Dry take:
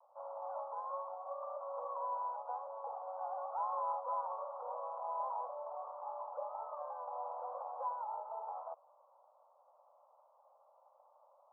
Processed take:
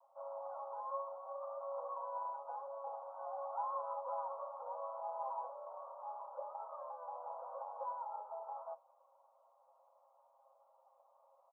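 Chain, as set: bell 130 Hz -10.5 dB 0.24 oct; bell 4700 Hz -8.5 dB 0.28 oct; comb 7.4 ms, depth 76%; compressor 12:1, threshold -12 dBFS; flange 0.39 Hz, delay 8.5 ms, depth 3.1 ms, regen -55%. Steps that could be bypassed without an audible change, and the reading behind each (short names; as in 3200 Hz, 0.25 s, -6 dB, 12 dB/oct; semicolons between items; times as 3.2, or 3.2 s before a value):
bell 130 Hz: input band starts at 430 Hz; bell 4700 Hz: input band ends at 1400 Hz; compressor, threshold -12 dBFS: input peak -25.5 dBFS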